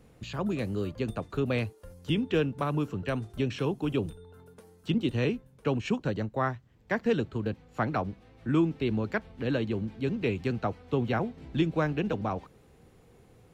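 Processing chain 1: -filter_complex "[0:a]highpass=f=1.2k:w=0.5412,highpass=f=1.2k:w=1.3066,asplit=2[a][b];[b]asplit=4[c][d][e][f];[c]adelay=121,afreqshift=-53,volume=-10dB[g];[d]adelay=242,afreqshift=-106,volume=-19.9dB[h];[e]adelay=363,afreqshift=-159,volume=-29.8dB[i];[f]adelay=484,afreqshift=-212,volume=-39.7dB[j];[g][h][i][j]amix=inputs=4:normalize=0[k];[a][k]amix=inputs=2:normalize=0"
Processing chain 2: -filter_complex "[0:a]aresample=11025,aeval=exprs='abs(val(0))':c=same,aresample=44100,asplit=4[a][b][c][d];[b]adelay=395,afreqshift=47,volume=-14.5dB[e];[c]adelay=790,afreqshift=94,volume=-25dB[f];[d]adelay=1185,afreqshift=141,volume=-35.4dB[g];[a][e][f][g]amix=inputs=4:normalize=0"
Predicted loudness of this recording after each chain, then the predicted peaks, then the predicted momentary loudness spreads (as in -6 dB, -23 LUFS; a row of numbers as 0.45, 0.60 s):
-40.5, -35.0 LUFS; -20.0, -14.5 dBFS; 10, 10 LU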